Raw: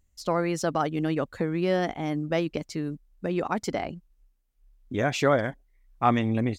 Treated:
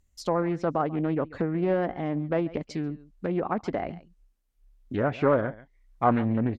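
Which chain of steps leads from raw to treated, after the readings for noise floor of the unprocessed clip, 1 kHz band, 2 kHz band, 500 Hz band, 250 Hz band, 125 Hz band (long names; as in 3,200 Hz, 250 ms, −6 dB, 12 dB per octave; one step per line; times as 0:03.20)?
−68 dBFS, −1.0 dB, −4.5 dB, 0.0 dB, 0.0 dB, −0.5 dB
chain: single-tap delay 139 ms −19.5 dB
treble cut that deepens with the level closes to 1,600 Hz, closed at −24 dBFS
highs frequency-modulated by the lows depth 0.33 ms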